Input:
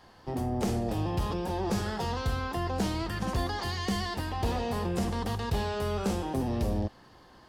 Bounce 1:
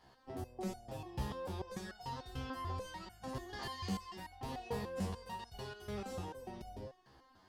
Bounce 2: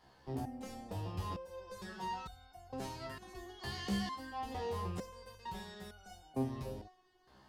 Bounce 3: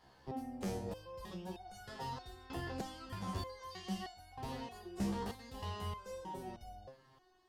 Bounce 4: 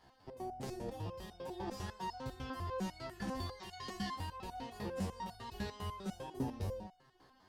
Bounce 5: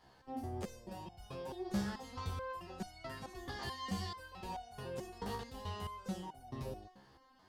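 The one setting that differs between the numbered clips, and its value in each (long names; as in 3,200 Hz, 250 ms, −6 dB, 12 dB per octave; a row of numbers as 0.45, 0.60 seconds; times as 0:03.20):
step-sequenced resonator, speed: 6.8, 2.2, 3.2, 10, 4.6 Hertz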